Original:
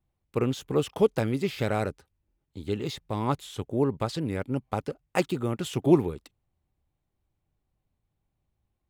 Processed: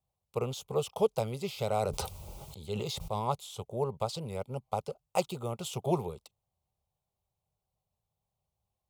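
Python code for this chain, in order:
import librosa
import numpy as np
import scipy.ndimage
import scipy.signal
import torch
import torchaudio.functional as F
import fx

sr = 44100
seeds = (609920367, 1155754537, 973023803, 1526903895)

y = fx.highpass(x, sr, hz=160.0, slope=6)
y = fx.fixed_phaser(y, sr, hz=710.0, stages=4)
y = fx.sustainer(y, sr, db_per_s=23.0, at=(1.69, 3.3))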